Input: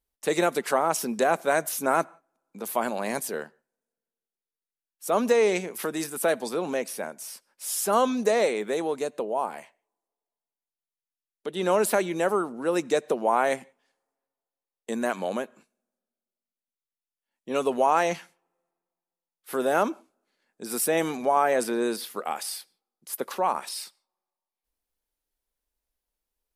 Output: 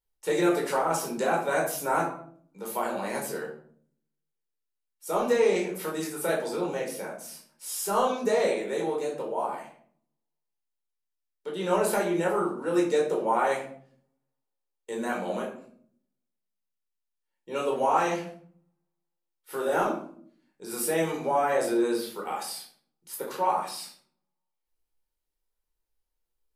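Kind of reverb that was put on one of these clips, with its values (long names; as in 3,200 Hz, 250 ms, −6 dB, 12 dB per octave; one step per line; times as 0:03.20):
rectangular room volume 670 cubic metres, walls furnished, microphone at 4.5 metres
level −8.5 dB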